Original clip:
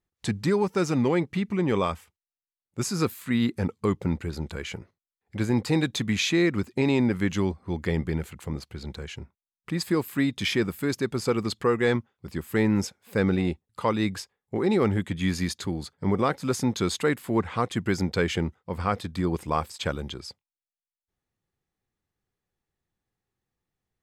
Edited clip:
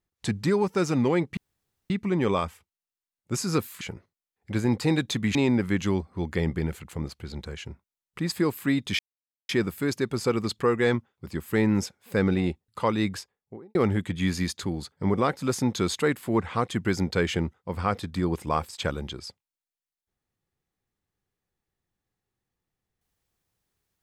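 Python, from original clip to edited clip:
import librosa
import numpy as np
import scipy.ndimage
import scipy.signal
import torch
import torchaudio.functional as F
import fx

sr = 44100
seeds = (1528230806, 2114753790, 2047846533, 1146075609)

y = fx.studio_fade_out(x, sr, start_s=14.14, length_s=0.62)
y = fx.edit(y, sr, fx.insert_room_tone(at_s=1.37, length_s=0.53),
    fx.cut(start_s=3.28, length_s=1.38),
    fx.cut(start_s=6.2, length_s=0.66),
    fx.insert_silence(at_s=10.5, length_s=0.5), tone=tone)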